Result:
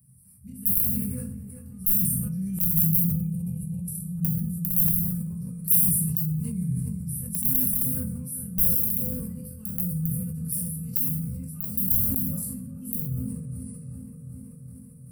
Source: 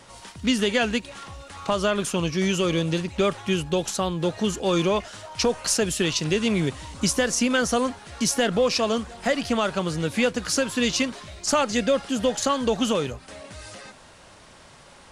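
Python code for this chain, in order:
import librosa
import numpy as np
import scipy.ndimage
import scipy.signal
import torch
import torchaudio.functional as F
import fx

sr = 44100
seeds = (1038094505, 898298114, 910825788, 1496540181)

p1 = fx.auto_swell(x, sr, attack_ms=189.0)
p2 = p1 + fx.echo_wet_lowpass(p1, sr, ms=385, feedback_pct=75, hz=1700.0, wet_db=-6, dry=0)
p3 = fx.spec_erase(p2, sr, start_s=3.15, length_s=0.9, low_hz=1100.0, high_hz=2200.0)
p4 = scipy.signal.sosfilt(scipy.signal.butter(2, 89.0, 'highpass', fs=sr, output='sos'), p3)
p5 = fx.peak_eq(p4, sr, hz=1600.0, db=-6.0, octaves=0.76)
p6 = fx.hum_notches(p5, sr, base_hz=50, count=5)
p7 = fx.doubler(p6, sr, ms=24.0, db=-5)
p8 = (np.mod(10.0 ** (12.5 / 20.0) * p7 + 1.0, 2.0) - 1.0) / 10.0 ** (12.5 / 20.0)
p9 = scipy.signal.sosfilt(scipy.signal.cheby2(4, 40, [310.0, 7100.0], 'bandstop', fs=sr, output='sos'), p8)
p10 = fx.high_shelf(p9, sr, hz=3500.0, db=9.0)
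p11 = fx.rev_fdn(p10, sr, rt60_s=0.77, lf_ratio=0.8, hf_ratio=0.65, size_ms=12.0, drr_db=-3.0)
y = fx.sustainer(p11, sr, db_per_s=26.0)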